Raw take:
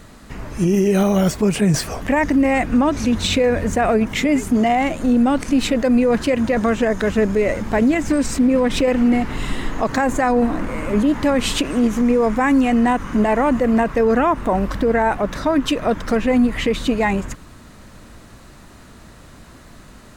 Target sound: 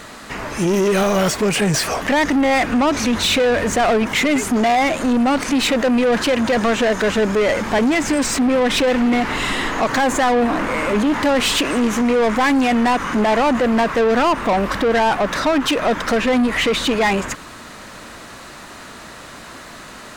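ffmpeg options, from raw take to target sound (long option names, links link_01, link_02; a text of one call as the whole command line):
ffmpeg -i in.wav -filter_complex "[0:a]asplit=2[link_01][link_02];[link_02]highpass=frequency=720:poles=1,volume=20dB,asoftclip=type=tanh:threshold=-8dB[link_03];[link_01][link_03]amix=inputs=2:normalize=0,lowpass=frequency=6400:poles=1,volume=-6dB,volume=-2dB" out.wav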